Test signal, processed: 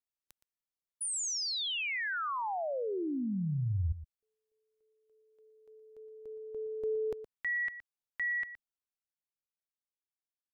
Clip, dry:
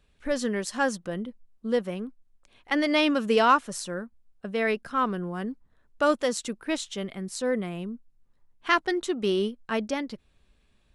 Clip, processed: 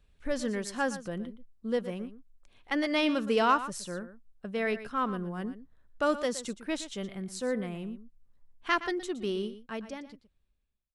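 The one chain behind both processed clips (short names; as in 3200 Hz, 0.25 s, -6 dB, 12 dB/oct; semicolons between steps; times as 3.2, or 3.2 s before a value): ending faded out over 2.23 s; low shelf 100 Hz +8 dB; on a send: echo 0.118 s -13.5 dB; on the sum: gain -5 dB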